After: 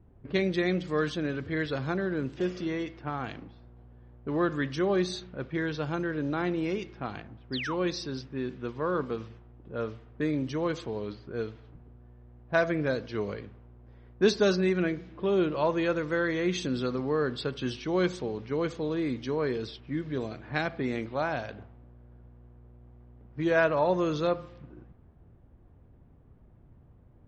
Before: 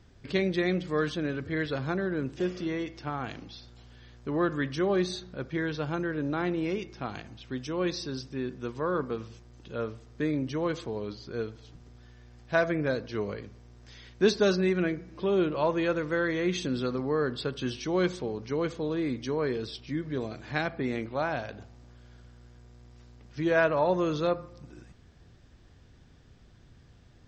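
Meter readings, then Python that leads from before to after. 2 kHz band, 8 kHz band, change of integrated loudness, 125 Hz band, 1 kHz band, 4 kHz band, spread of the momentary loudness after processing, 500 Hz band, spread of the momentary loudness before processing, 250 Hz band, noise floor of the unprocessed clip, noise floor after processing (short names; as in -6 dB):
0.0 dB, -0.5 dB, 0.0 dB, 0.0 dB, 0.0 dB, 0.0 dB, 11 LU, 0.0 dB, 12 LU, 0.0 dB, -56 dBFS, -56 dBFS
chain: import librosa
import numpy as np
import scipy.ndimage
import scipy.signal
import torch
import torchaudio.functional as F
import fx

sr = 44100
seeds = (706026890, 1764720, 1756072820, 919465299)

y = fx.dmg_noise_band(x, sr, seeds[0], low_hz=510.0, high_hz=3800.0, level_db=-65.0)
y = fx.spec_paint(y, sr, seeds[1], shape='fall', start_s=7.52, length_s=0.23, low_hz=780.0, high_hz=5300.0, level_db=-35.0)
y = fx.env_lowpass(y, sr, base_hz=530.0, full_db=-27.0)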